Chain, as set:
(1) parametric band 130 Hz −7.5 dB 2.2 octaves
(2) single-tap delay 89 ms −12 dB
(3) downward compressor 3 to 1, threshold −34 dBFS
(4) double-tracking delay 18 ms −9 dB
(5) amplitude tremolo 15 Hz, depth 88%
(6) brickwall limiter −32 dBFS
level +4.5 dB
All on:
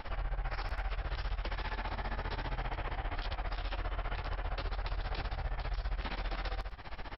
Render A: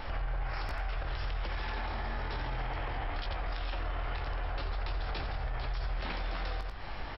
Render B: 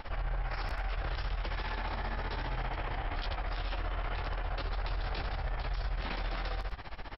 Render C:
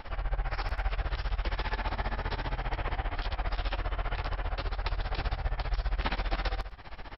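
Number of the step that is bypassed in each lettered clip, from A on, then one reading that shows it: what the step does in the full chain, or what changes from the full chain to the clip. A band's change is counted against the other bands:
5, change in crest factor −2.0 dB
3, average gain reduction 11.0 dB
6, average gain reduction 3.0 dB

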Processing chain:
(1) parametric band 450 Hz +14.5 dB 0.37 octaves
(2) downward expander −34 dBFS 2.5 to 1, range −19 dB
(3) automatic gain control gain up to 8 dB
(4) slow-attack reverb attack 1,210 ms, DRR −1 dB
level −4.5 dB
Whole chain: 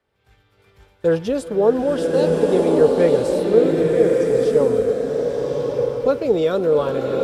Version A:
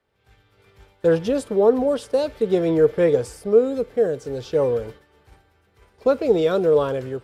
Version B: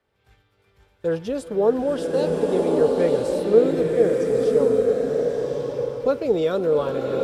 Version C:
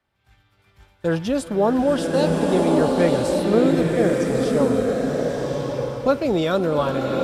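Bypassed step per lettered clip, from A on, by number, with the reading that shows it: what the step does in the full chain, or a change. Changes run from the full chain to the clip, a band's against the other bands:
4, change in integrated loudness −2.5 LU
3, change in momentary loudness spread +1 LU
1, 500 Hz band −7.5 dB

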